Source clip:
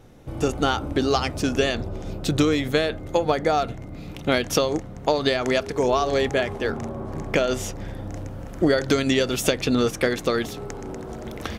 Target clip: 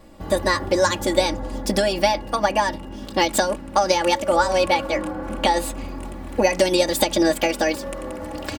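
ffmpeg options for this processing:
-af "aecho=1:1:4.8:0.87,asetrate=59535,aresample=44100"

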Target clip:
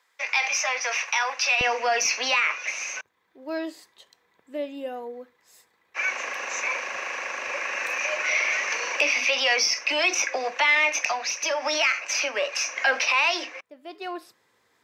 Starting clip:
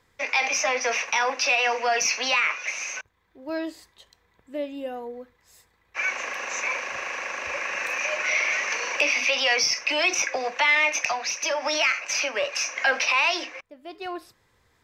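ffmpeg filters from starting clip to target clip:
-af "asetnsamples=n=441:p=0,asendcmd='1.61 highpass f 230',highpass=820"

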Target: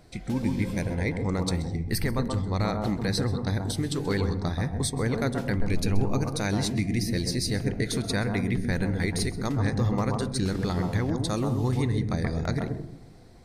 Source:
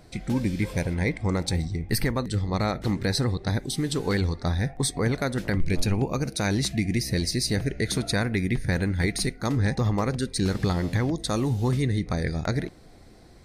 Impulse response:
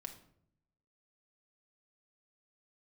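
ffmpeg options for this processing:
-filter_complex "[0:a]asplit=2[a][b];[b]highshelf=f=1.6k:t=q:w=1.5:g=-13.5[c];[1:a]atrim=start_sample=2205,adelay=130[d];[c][d]afir=irnorm=-1:irlink=0,volume=0dB[e];[a][e]amix=inputs=2:normalize=0,volume=-3dB"

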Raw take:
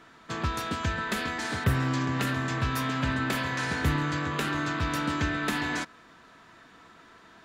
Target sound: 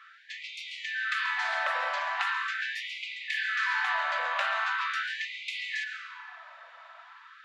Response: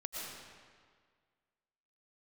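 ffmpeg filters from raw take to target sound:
-filter_complex "[0:a]lowpass=3.2k,asplit=2[a][b];[1:a]atrim=start_sample=2205[c];[b][c]afir=irnorm=-1:irlink=0,volume=-2dB[d];[a][d]amix=inputs=2:normalize=0,afftfilt=real='re*gte(b*sr/1024,510*pow(2000/510,0.5+0.5*sin(2*PI*0.41*pts/sr)))':imag='im*gte(b*sr/1024,510*pow(2000/510,0.5+0.5*sin(2*PI*0.41*pts/sr)))':win_size=1024:overlap=0.75"

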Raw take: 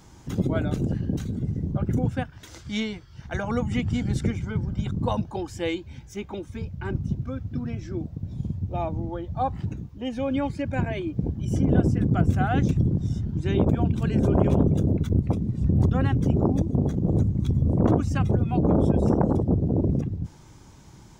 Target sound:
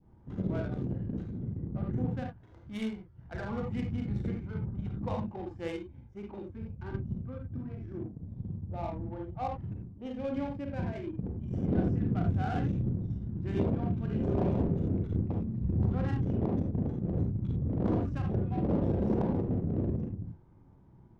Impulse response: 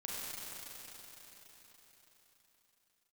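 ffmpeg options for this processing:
-filter_complex "[0:a]adynamicequalizer=threshold=0.00891:dfrequency=1300:dqfactor=0.98:tfrequency=1300:tqfactor=0.98:attack=5:release=100:ratio=0.375:range=1.5:mode=cutabove:tftype=bell[a];[1:a]atrim=start_sample=2205,afade=t=out:st=0.14:d=0.01,atrim=end_sample=6615[b];[a][b]afir=irnorm=-1:irlink=0,adynamicsmooth=sensitivity=5:basefreq=820,volume=-4.5dB"

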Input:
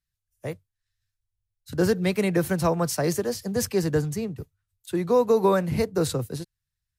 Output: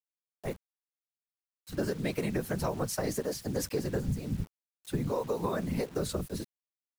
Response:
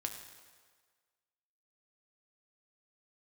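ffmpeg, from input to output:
-filter_complex "[0:a]asettb=1/sr,asplit=3[a][b][c];[a]atrim=end=4.084[d];[b]atrim=start=4.08:end=5.48,asetpts=PTS-STARTPTS,afade=t=in:d=0.004:c=qsin,afade=t=out:st=1.396:d=0.004:c=qsin,lowshelf=f=190:t=q:w=3:g=9[e];[c]atrim=start=5.476[f];[d][e]acrossfade=d=0.004:c1=hsin:c2=qsin[g];[g][f]acrossfade=d=0.004:c1=qsin:c2=hsin,afftfilt=real='hypot(re,im)*cos(2*PI*random(0))':imag='hypot(re,im)*sin(2*PI*random(1))':win_size=512:overlap=0.75,acompressor=threshold=-30dB:ratio=8,acrusher=bits=8:mix=0:aa=0.000001,volume=2.5dB"

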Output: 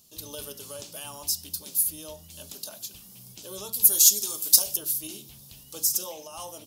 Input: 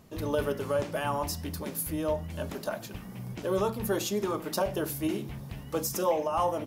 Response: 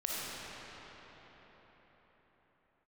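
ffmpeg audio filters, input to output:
-filter_complex "[0:a]asettb=1/sr,asplit=3[a][b][c];[a]atrim=end=3.734[d];[b]atrim=start=3.73:end=4.77,asetpts=PTS-STARTPTS,afade=t=in:d=0.004:c=qsin,afade=t=out:st=1.036:d=0.004:c=qsin,bass=f=250:g=-2,treble=f=4k:g=14[e];[c]atrim=start=4.766[f];[d][e]acrossfade=d=0.004:c1=hsin:c2=qsin[g];[g][f]acrossfade=d=0.004:c1=qsin:c2=hsin,aexciter=amount=8.7:drive=7.5:freq=3k,volume=-14dB"

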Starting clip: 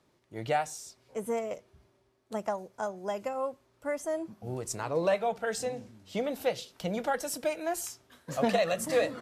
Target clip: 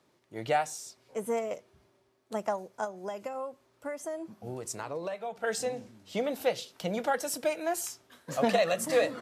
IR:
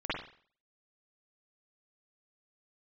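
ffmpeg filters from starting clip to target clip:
-filter_complex "[0:a]highpass=f=160:p=1,asettb=1/sr,asplit=3[a][b][c];[a]atrim=end=2.844[d];[b]atrim=start=2.84:end=5.44,asetpts=PTS-STARTPTS,afade=t=in:d=0.004:c=qsin,afade=t=out:st=2.596:d=0.004:c=qsin,acompressor=threshold=-35dB:ratio=6[e];[c]atrim=start=5.436[f];[d][e]acrossfade=d=0.004:c1=hsin:c2=qsin[g];[g][f]acrossfade=d=0.004:c1=qsin:c2=hsin,volume=1.5dB"

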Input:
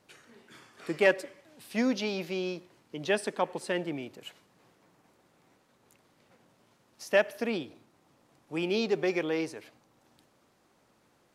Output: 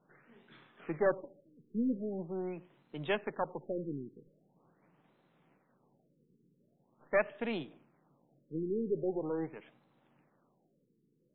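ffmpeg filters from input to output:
-af "aeval=exprs='if(lt(val(0),0),0.447*val(0),val(0))':c=same,lowshelf=f=110:t=q:w=3:g=-9.5,afftfilt=real='re*lt(b*sr/1024,470*pow(4200/470,0.5+0.5*sin(2*PI*0.43*pts/sr)))':imag='im*lt(b*sr/1024,470*pow(4200/470,0.5+0.5*sin(2*PI*0.43*pts/sr)))':win_size=1024:overlap=0.75,volume=-3dB"

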